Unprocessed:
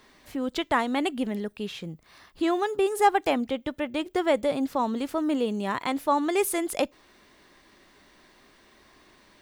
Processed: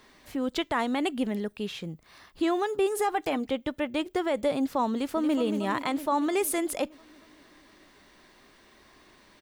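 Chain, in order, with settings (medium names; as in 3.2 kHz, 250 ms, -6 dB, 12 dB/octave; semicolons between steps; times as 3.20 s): 2.96–3.49 s: comb 6.6 ms, depth 40%; 4.93–5.36 s: echo throw 230 ms, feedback 70%, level -9 dB; peak limiter -17 dBFS, peak gain reduction 8.5 dB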